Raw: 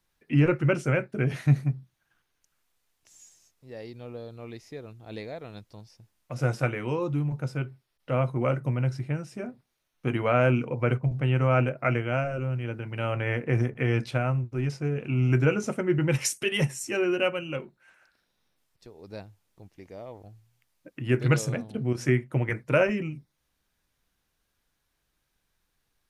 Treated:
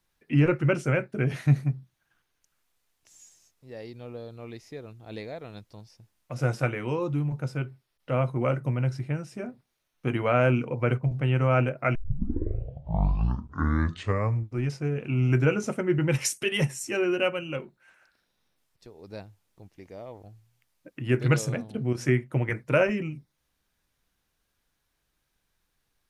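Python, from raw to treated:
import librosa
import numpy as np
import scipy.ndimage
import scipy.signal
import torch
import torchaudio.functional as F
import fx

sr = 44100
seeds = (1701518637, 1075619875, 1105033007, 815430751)

y = fx.edit(x, sr, fx.tape_start(start_s=11.95, length_s=2.73), tone=tone)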